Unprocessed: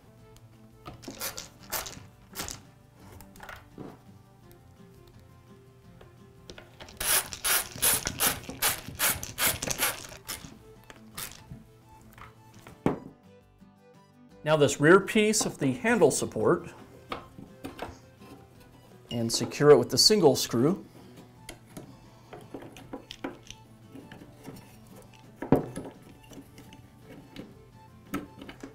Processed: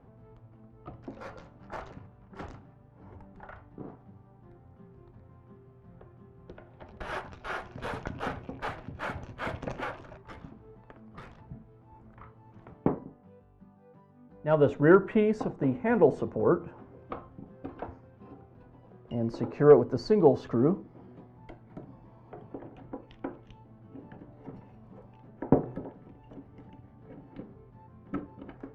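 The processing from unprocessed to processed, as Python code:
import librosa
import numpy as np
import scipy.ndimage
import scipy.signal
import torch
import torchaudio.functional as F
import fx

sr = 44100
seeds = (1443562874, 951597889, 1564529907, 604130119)

y = scipy.signal.sosfilt(scipy.signal.butter(2, 1200.0, 'lowpass', fs=sr, output='sos'), x)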